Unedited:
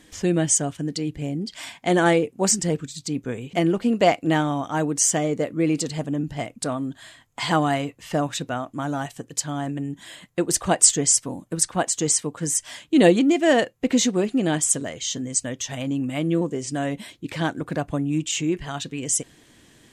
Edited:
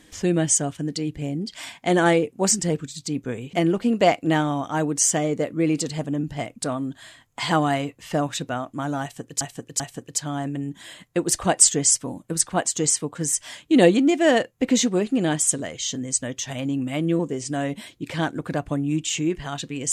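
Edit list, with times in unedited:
9.02–9.41 s: loop, 3 plays

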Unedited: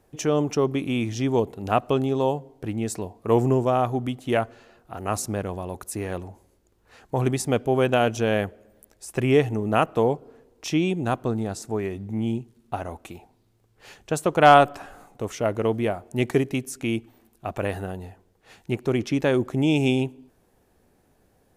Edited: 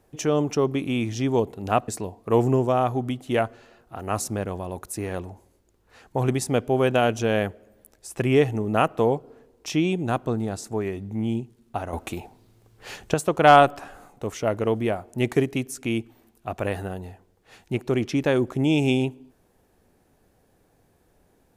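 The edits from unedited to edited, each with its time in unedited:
1.88–2.86 s: delete
12.91–14.12 s: gain +8 dB

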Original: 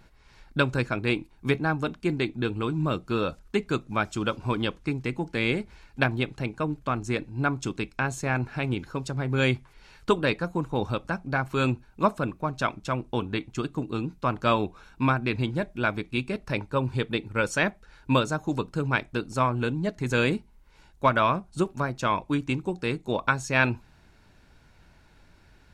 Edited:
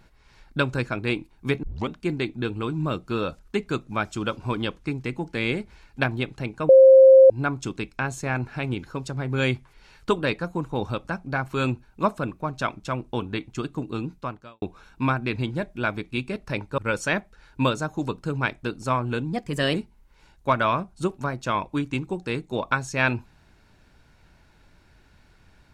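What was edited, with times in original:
1.63 s: tape start 0.26 s
6.69–7.30 s: bleep 530 Hz -7.5 dBFS
14.14–14.62 s: fade out quadratic
16.78–17.28 s: delete
19.83–20.30 s: speed 115%

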